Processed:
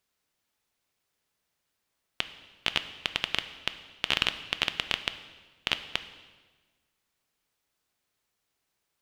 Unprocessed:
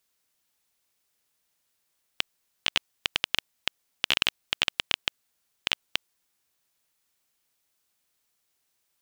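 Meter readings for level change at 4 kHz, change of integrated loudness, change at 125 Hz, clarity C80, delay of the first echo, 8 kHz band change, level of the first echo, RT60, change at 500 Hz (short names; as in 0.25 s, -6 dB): -2.0 dB, -2.0 dB, +2.5 dB, 14.0 dB, none, -5.5 dB, none, 1.3 s, +1.0 dB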